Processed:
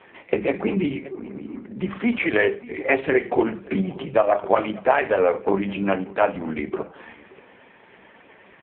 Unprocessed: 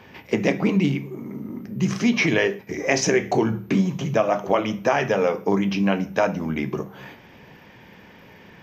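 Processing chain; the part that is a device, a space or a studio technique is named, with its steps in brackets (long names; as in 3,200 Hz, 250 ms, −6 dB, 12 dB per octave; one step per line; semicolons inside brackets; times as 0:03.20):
satellite phone (band-pass filter 310–3,300 Hz; single-tap delay 578 ms −21 dB; level +4 dB; AMR narrowband 4.75 kbit/s 8,000 Hz)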